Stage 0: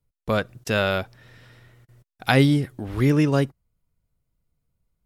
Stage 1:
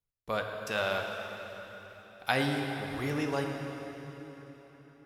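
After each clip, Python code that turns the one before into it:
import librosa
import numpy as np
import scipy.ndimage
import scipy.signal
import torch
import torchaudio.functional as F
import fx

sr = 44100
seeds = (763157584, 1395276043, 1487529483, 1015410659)

y = fx.low_shelf(x, sr, hz=460.0, db=-10.0)
y = fx.rev_plate(y, sr, seeds[0], rt60_s=4.7, hf_ratio=0.75, predelay_ms=0, drr_db=2.0)
y = fx.dynamic_eq(y, sr, hz=780.0, q=1.0, threshold_db=-36.0, ratio=4.0, max_db=4)
y = y * 10.0 ** (-8.5 / 20.0)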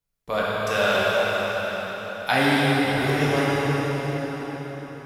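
y = fx.rev_plate(x, sr, seeds[1], rt60_s=4.5, hf_ratio=0.8, predelay_ms=0, drr_db=-7.0)
y = y * 10.0 ** (4.0 / 20.0)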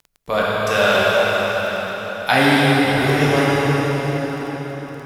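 y = fx.dmg_crackle(x, sr, seeds[2], per_s=12.0, level_db=-36.0)
y = y * 10.0 ** (5.5 / 20.0)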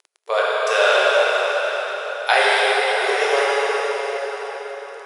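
y = fx.brickwall_bandpass(x, sr, low_hz=380.0, high_hz=11000.0)
y = y + 10.0 ** (-21.5 / 20.0) * np.pad(y, (int(184 * sr / 1000.0), 0))[:len(y)]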